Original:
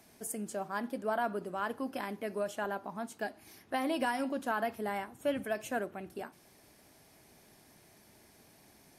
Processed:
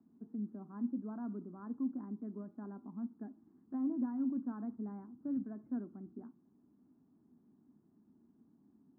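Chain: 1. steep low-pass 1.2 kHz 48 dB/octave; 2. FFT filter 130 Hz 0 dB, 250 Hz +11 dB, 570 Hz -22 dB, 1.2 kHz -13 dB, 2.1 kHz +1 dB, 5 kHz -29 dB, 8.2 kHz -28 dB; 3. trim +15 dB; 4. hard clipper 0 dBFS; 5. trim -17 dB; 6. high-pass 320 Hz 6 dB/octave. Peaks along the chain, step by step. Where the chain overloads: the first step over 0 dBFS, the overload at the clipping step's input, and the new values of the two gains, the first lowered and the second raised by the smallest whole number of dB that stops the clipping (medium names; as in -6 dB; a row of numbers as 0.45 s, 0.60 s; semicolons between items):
-22.0 dBFS, -20.0 dBFS, -5.0 dBFS, -5.0 dBFS, -22.0 dBFS, -26.5 dBFS; nothing clips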